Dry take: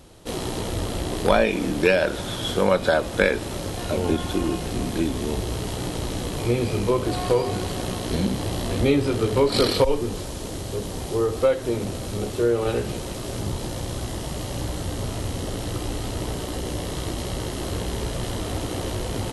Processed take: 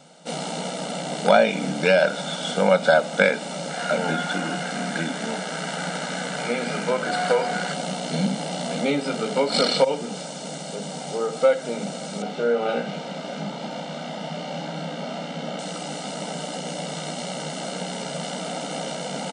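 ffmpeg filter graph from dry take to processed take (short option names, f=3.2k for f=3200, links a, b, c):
-filter_complex "[0:a]asettb=1/sr,asplit=3[a][b][c];[a]atrim=end=3.704[d];[b]atrim=start=3.7:end=7.74,asetpts=PTS-STARTPTS,afade=t=in:d=0.004:c=qsin,afade=t=out:st=4.036:d=0.004:c=qsin,equalizer=f=1.6k:t=o:w=0.7:g=11.5,bandreject=f=50:t=h:w=6,bandreject=f=100:t=h:w=6,bandreject=f=150:t=h:w=6,bandreject=f=200:t=h:w=6,bandreject=f=250:t=h:w=6,bandreject=f=300:t=h:w=6,bandreject=f=350:t=h:w=6,bandreject=f=400:t=h:w=6[e];[c]atrim=start=7.736[f];[d][e]acrossfade=d=0.004:c1=hsin:c2=qsin[g];[g][f]acrossfade=d=0.004:c1=qsin:c2=hsin,asettb=1/sr,asplit=3[h][i][j];[h]atrim=end=12.224[k];[i]atrim=start=12.22:end=15.59,asetpts=PTS-STARTPTS,afade=t=in:d=0.004:c=qsin,afade=t=out:st=3.366:d=0.004:c=qsin,lowpass=3.7k,asplit=2[l][m];[m]adelay=30,volume=-5dB[n];[l][n]amix=inputs=2:normalize=0,atrim=end_sample=148617[o];[j]atrim=start=15.586[p];[k][o]acrossfade=d=0.004:c1=hsin:c2=qsin[q];[q][p]acrossfade=d=0.004:c1=qsin:c2=hsin,afftfilt=real='re*between(b*sr/4096,140,9400)':imag='im*between(b*sr/4096,140,9400)':win_size=4096:overlap=0.75,aecho=1:1:1.4:0.81"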